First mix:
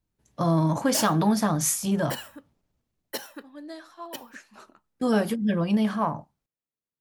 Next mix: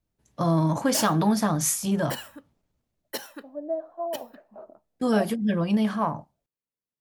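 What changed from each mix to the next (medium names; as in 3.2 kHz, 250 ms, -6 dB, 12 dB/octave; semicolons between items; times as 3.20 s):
second voice: add resonant low-pass 640 Hz, resonance Q 6.3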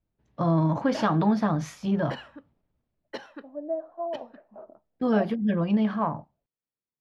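background: add low-pass 11 kHz 24 dB/octave; master: add distance through air 270 m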